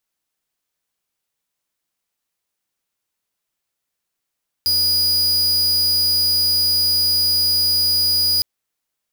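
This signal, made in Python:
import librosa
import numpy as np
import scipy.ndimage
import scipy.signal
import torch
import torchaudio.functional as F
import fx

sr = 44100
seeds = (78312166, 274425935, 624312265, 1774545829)

y = fx.tone(sr, length_s=3.76, wave='square', hz=4910.0, level_db=-17.0)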